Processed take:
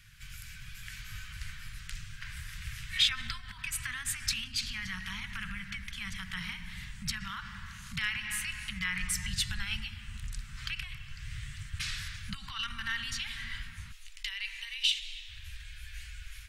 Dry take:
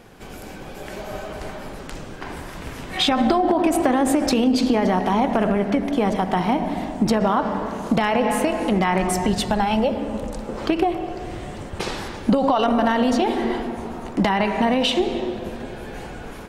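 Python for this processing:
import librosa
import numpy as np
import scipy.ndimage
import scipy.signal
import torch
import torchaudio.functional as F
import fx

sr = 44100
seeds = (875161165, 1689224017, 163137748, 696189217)

y = fx.cheby2_bandstop(x, sr, low_hz=fx.steps((0.0, 320.0), (13.91, 110.0), (15.28, 240.0)), high_hz=650.0, order=4, stop_db=70)
y = y * librosa.db_to_amplitude(-4.0)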